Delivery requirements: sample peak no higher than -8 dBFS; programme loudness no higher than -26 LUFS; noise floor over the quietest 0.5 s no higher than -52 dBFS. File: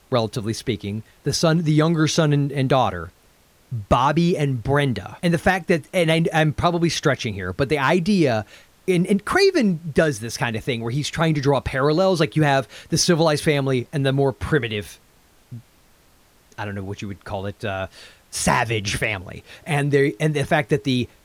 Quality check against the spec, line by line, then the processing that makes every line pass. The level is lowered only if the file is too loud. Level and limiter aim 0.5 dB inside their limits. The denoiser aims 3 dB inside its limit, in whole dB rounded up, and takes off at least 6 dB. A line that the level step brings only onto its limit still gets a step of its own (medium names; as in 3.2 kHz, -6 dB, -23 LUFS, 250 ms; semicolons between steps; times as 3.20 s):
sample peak -5.0 dBFS: fail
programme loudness -21.0 LUFS: fail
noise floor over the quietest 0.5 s -56 dBFS: pass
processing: trim -5.5 dB